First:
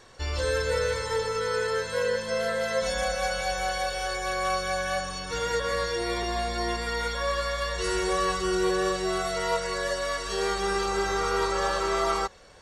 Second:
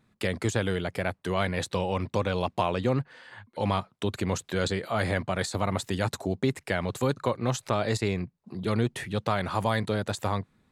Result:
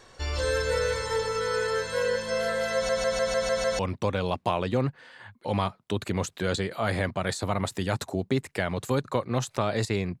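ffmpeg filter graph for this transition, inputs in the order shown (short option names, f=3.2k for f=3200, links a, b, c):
-filter_complex "[0:a]apad=whole_dur=10.2,atrim=end=10.2,asplit=7[a][b][c][d][e][f][g];[a]atrim=end=2.892[h];[b]atrim=start=2.738:end=2.892[i];[c]atrim=start=2.738:end=2.892[j];[d]atrim=start=2.738:end=2.892[k];[e]atrim=start=2.738:end=2.892[l];[f]atrim=start=2.738:end=2.892[m];[g]atrim=start=2.738:end=2.892[n];[1:a]atrim=start=1.908:end=8.32[o];[h][i]acrossfade=d=0.004:c1=hsin:c2=hsin[p];[p][j]acrossfade=d=0.004:c1=hsin:c2=hsin[q];[q][k]acrossfade=d=0.004:c1=hsin:c2=hsin[r];[r][l]acrossfade=d=0.004:c1=hsin:c2=hsin[s];[s][m]acrossfade=d=0.004:c1=hsin:c2=hsin[t];[t][n]acrossfade=d=0.004:c1=hsin:c2=hsin[u];[u][o]acrossfade=d=0.004:c1=hsin:c2=hsin"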